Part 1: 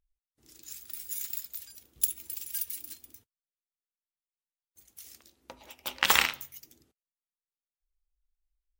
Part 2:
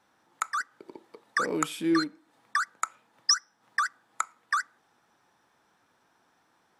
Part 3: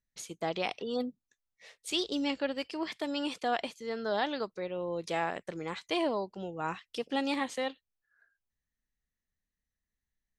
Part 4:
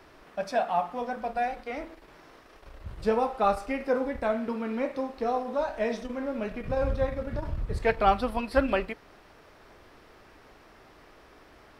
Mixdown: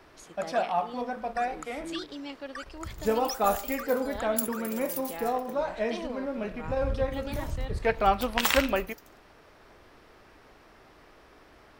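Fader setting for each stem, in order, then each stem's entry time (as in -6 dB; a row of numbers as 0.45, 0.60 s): -3.0, -14.5, -8.0, -1.0 dB; 2.35, 0.00, 0.00, 0.00 s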